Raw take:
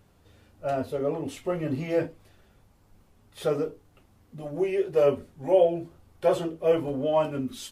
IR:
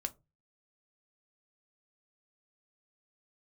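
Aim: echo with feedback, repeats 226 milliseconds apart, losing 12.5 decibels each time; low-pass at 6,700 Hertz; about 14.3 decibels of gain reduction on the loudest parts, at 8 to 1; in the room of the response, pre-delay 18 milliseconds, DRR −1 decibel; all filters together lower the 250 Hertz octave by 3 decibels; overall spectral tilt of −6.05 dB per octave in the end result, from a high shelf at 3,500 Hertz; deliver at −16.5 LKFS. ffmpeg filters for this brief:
-filter_complex "[0:a]lowpass=6700,equalizer=frequency=250:width_type=o:gain=-4.5,highshelf=frequency=3500:gain=-6,acompressor=threshold=-31dB:ratio=8,aecho=1:1:226|452|678:0.237|0.0569|0.0137,asplit=2[link_01][link_02];[1:a]atrim=start_sample=2205,adelay=18[link_03];[link_02][link_03]afir=irnorm=-1:irlink=0,volume=1.5dB[link_04];[link_01][link_04]amix=inputs=2:normalize=0,volume=16.5dB"

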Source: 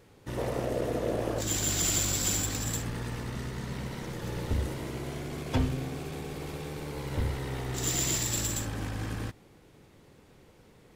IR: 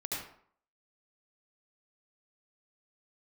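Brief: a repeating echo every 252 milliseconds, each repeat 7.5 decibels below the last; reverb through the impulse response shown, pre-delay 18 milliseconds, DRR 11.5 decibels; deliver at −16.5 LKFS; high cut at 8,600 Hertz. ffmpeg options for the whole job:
-filter_complex "[0:a]lowpass=8600,aecho=1:1:252|504|756|1008|1260:0.422|0.177|0.0744|0.0312|0.0131,asplit=2[link_01][link_02];[1:a]atrim=start_sample=2205,adelay=18[link_03];[link_02][link_03]afir=irnorm=-1:irlink=0,volume=-14.5dB[link_04];[link_01][link_04]amix=inputs=2:normalize=0,volume=15dB"

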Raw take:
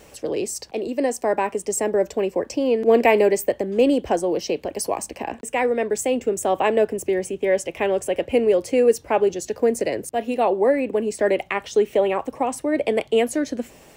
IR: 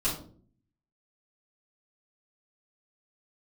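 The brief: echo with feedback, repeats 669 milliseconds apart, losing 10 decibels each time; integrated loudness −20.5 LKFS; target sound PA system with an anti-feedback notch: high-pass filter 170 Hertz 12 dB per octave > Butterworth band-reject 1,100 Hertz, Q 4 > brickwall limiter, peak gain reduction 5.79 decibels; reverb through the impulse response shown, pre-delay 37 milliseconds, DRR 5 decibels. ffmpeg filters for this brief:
-filter_complex "[0:a]aecho=1:1:669|1338|2007|2676:0.316|0.101|0.0324|0.0104,asplit=2[link_01][link_02];[1:a]atrim=start_sample=2205,adelay=37[link_03];[link_02][link_03]afir=irnorm=-1:irlink=0,volume=-13dB[link_04];[link_01][link_04]amix=inputs=2:normalize=0,highpass=170,asuperstop=centerf=1100:order=8:qfactor=4,volume=0.5dB,alimiter=limit=-10dB:level=0:latency=1"

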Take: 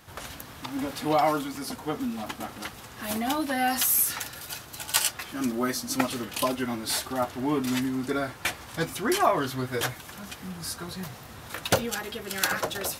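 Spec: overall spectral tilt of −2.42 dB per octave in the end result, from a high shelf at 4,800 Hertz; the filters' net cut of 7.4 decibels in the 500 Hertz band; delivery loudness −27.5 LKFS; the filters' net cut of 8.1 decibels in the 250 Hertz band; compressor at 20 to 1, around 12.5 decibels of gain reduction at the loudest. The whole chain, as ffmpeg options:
ffmpeg -i in.wav -af "equalizer=frequency=250:width_type=o:gain=-7,equalizer=frequency=500:width_type=o:gain=-8.5,highshelf=frequency=4800:gain=4,acompressor=threshold=-29dB:ratio=20,volume=7dB" out.wav

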